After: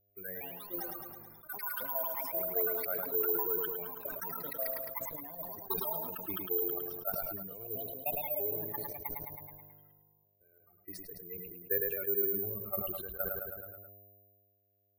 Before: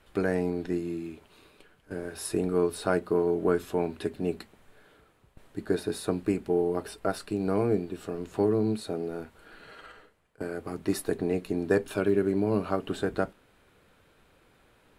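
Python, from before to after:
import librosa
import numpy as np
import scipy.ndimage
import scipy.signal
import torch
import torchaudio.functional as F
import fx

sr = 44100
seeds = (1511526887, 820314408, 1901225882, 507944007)

p1 = fx.bin_expand(x, sr, power=3.0)
p2 = scipy.signal.sosfilt(scipy.signal.butter(2, 4100.0, 'lowpass', fs=sr, output='sos'), p1)
p3 = fx.low_shelf(p2, sr, hz=180.0, db=-4.5)
p4 = fx.hum_notches(p3, sr, base_hz=60, count=3)
p5 = fx.level_steps(p4, sr, step_db=11)
p6 = p4 + (p5 * librosa.db_to_amplitude(2.5))
p7 = fx.tremolo_random(p6, sr, seeds[0], hz=3.5, depth_pct=55)
p8 = fx.dmg_buzz(p7, sr, base_hz=100.0, harmonics=7, level_db=-68.0, tilt_db=-4, odd_only=False)
p9 = fx.fixed_phaser(p8, sr, hz=940.0, stages=6)
p10 = fx.echo_pitch(p9, sr, ms=245, semitones=7, count=3, db_per_echo=-3.0)
p11 = p10 + fx.echo_feedback(p10, sr, ms=107, feedback_pct=51, wet_db=-10, dry=0)
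p12 = (np.kron(scipy.signal.resample_poly(p11, 1, 3), np.eye(3)[0]) * 3)[:len(p11)]
p13 = fx.sustainer(p12, sr, db_per_s=31.0)
y = p13 * librosa.db_to_amplitude(-8.5)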